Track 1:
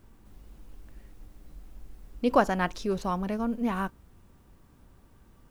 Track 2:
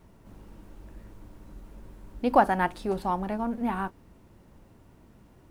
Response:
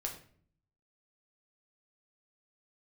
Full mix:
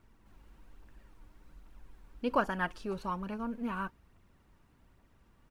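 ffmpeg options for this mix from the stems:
-filter_complex "[0:a]volume=0.398[s0];[1:a]highpass=1400,aphaser=in_gain=1:out_gain=1:delay=3.6:decay=0.53:speed=1.2:type=triangular,volume=-1,adelay=0.4,volume=0.631[s1];[s0][s1]amix=inputs=2:normalize=0,highshelf=f=3700:g=-9"

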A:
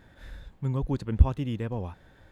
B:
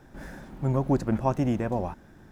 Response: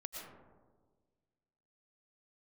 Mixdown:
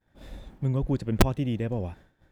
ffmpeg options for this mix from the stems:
-filter_complex "[0:a]aeval=exprs='(mod(3.16*val(0)+1,2)-1)/3.16':c=same,volume=1.06[s0];[1:a]acompressor=threshold=0.0355:ratio=6,volume=0.422[s1];[s0][s1]amix=inputs=2:normalize=0,agate=range=0.0224:threshold=0.00708:ratio=3:detection=peak"

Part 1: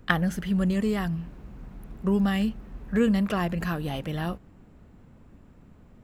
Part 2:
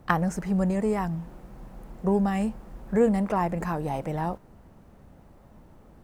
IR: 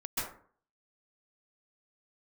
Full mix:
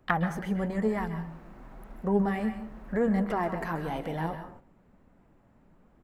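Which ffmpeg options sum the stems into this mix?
-filter_complex "[0:a]highpass=170,acompressor=threshold=0.0224:ratio=6,volume=0.531,asplit=2[s0][s1];[s1]volume=0.422[s2];[1:a]highshelf=f=3100:t=q:w=1.5:g=-12.5,flanger=delay=2.7:depth=6.7:regen=47:speed=1:shape=triangular,adelay=0.9,volume=0.891,asplit=2[s3][s4];[s4]volume=0.211[s5];[2:a]atrim=start_sample=2205[s6];[s2][s5]amix=inputs=2:normalize=0[s7];[s7][s6]afir=irnorm=-1:irlink=0[s8];[s0][s3][s8]amix=inputs=3:normalize=0,agate=range=0.447:threshold=0.00355:ratio=16:detection=peak"

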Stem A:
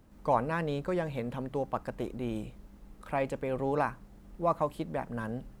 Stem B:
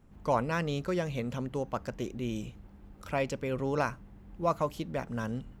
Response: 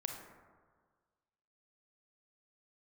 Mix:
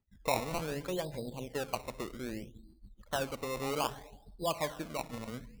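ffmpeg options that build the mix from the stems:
-filter_complex "[0:a]equalizer=f=1400:t=o:w=0.38:g=-9,afwtdn=0.00794,volume=0.447,asplit=2[s0][s1];[s1]volume=0.531[s2];[1:a]acompressor=threshold=0.0178:ratio=2,aeval=exprs='val(0)*pow(10,-21*(0.5-0.5*cos(2*PI*7*n/s))/20)':c=same,volume=-1,volume=1,asplit=2[s3][s4];[s4]volume=0.168[s5];[2:a]atrim=start_sample=2205[s6];[s2][s5]amix=inputs=2:normalize=0[s7];[s7][s6]afir=irnorm=-1:irlink=0[s8];[s0][s3][s8]amix=inputs=3:normalize=0,afftdn=nr=19:nf=-47,acrusher=samples=19:mix=1:aa=0.000001:lfo=1:lforange=19:lforate=0.63"

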